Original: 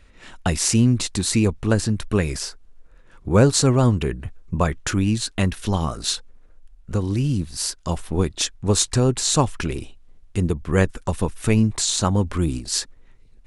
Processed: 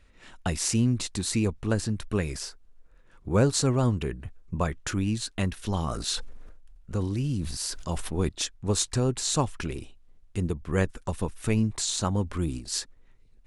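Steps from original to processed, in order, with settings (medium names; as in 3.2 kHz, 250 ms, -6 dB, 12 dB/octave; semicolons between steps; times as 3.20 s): 5.64–8.29 s: decay stretcher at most 38 dB/s; trim -7 dB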